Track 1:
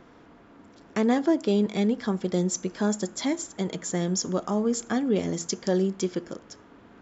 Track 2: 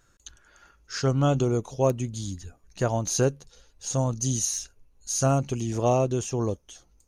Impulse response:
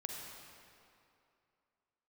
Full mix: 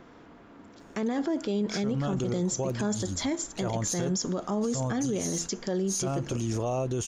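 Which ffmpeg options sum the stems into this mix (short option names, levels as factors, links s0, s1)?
-filter_complex "[0:a]volume=1.12,asplit=2[s0][s1];[1:a]adelay=800,volume=1.12[s2];[s1]apad=whole_len=347295[s3];[s2][s3]sidechaincompress=threshold=0.0447:ratio=8:attack=5.6:release=139[s4];[s0][s4]amix=inputs=2:normalize=0,alimiter=limit=0.0841:level=0:latency=1:release=16"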